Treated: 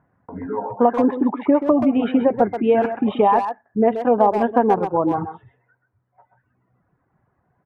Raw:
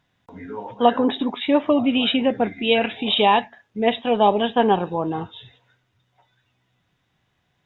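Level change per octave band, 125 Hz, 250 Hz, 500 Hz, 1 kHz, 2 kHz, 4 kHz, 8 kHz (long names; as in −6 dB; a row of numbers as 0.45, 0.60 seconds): +1.0 dB, +3.0 dB, +2.5 dB, +1.5 dB, −6.5 dB, below −15 dB, can't be measured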